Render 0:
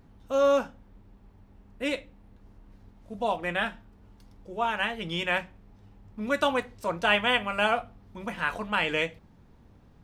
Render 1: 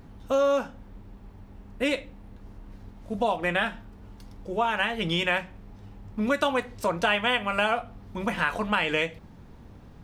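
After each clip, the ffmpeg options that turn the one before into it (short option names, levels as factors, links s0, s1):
-af "acompressor=threshold=0.0282:ratio=3,volume=2.51"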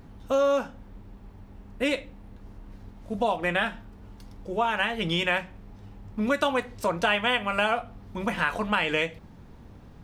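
-af anull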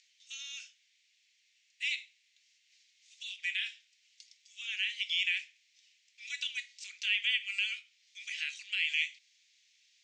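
-filter_complex "[0:a]crystalizer=i=4:c=0,asuperpass=centerf=4000:order=12:qfactor=0.76,acrossover=split=3400[s0][s1];[s1]acompressor=threshold=0.0126:ratio=4:attack=1:release=60[s2];[s0][s2]amix=inputs=2:normalize=0,volume=0.531"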